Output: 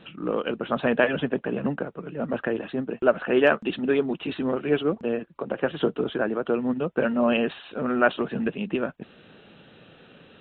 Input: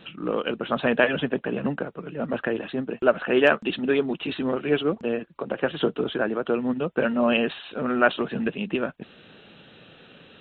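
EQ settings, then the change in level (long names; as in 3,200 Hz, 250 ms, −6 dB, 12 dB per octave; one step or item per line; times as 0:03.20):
high-shelf EQ 3,000 Hz −8 dB
0.0 dB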